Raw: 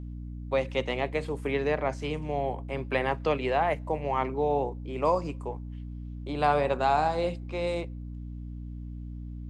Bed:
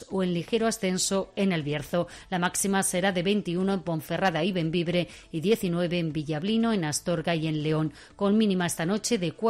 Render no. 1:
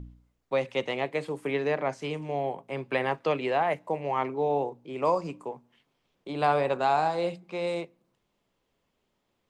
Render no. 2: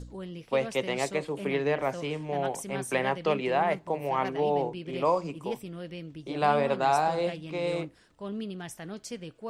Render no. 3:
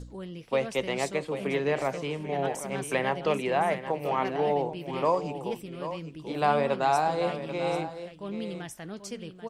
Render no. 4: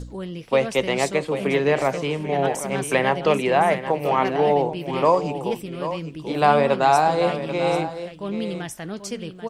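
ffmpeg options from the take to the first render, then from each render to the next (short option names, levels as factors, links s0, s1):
-af "bandreject=f=60:t=h:w=4,bandreject=f=120:t=h:w=4,bandreject=f=180:t=h:w=4,bandreject=f=240:t=h:w=4,bandreject=f=300:t=h:w=4"
-filter_complex "[1:a]volume=0.224[s0];[0:a][s0]amix=inputs=2:normalize=0"
-af "aecho=1:1:787:0.282"
-af "volume=2.37"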